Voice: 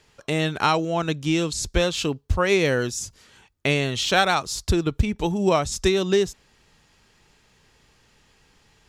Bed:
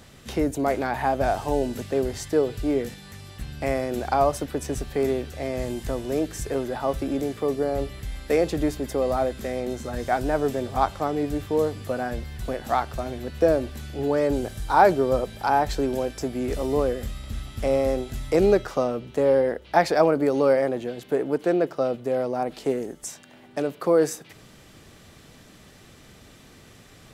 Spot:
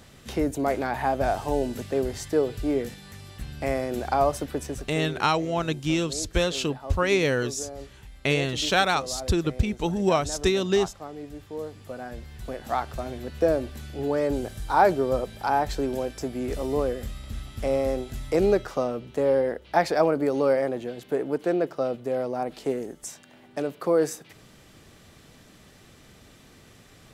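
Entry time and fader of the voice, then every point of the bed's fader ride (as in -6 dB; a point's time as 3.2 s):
4.60 s, -2.5 dB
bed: 4.58 s -1.5 dB
5.12 s -13 dB
11.43 s -13 dB
12.91 s -2.5 dB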